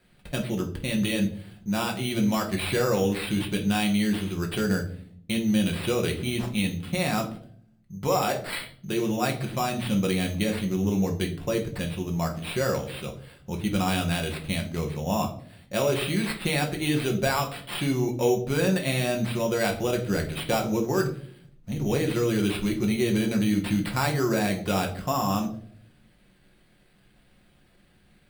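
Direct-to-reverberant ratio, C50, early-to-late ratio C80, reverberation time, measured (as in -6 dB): 1.0 dB, 10.5 dB, 15.0 dB, 0.60 s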